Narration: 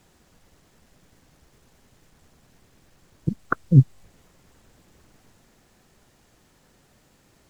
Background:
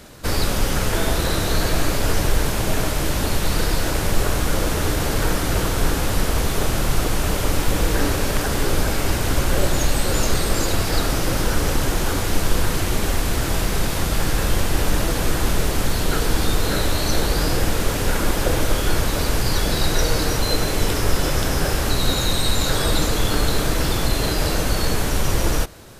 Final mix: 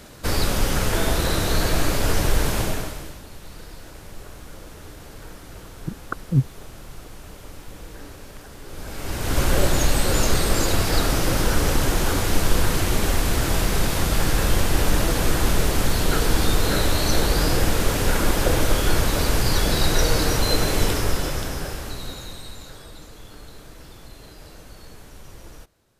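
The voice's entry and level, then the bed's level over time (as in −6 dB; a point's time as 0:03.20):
2.60 s, −5.5 dB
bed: 0:02.61 −1 dB
0:03.23 −20 dB
0:08.63 −20 dB
0:09.42 0 dB
0:20.82 0 dB
0:22.91 −23 dB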